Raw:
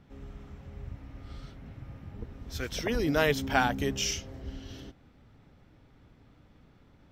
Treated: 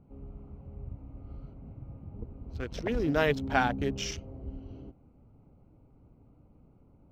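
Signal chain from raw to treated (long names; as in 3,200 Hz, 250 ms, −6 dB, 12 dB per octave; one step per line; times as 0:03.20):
adaptive Wiener filter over 25 samples
low-pass filter 3,400 Hz 6 dB per octave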